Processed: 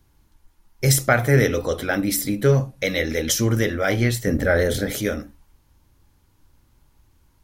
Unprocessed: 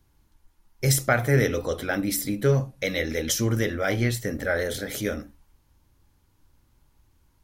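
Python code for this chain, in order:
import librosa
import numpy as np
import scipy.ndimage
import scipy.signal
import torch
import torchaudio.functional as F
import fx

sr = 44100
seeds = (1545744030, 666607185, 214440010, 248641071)

y = fx.low_shelf(x, sr, hz=420.0, db=8.0, at=(4.27, 4.93))
y = y * 10.0 ** (4.0 / 20.0)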